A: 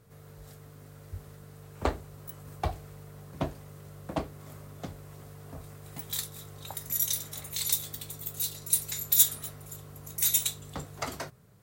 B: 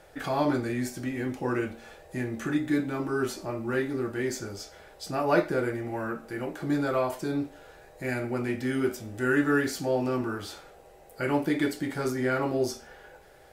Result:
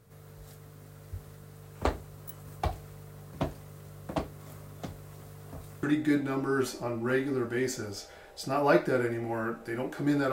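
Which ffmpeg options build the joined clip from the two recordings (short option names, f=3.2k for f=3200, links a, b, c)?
-filter_complex "[0:a]apad=whole_dur=10.32,atrim=end=10.32,atrim=end=5.832[a];[1:a]atrim=start=2.458:end=6.95[b];[a][b]acrossfade=d=0.004:c1=hsin:c2=hsin"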